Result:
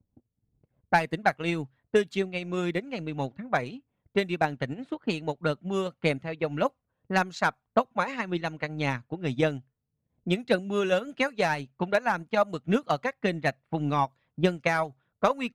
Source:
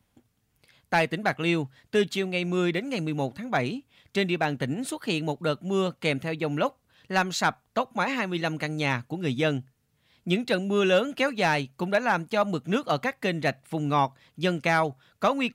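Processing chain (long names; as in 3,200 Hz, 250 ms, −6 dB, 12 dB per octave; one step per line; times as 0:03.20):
low-pass that shuts in the quiet parts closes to 440 Hz, open at −21 dBFS
phase shifter 1.8 Hz, delay 2.2 ms, feedback 28%
transient designer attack +7 dB, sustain −7 dB
dynamic equaliser 3,200 Hz, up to −5 dB, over −37 dBFS, Q 1.8
level −4.5 dB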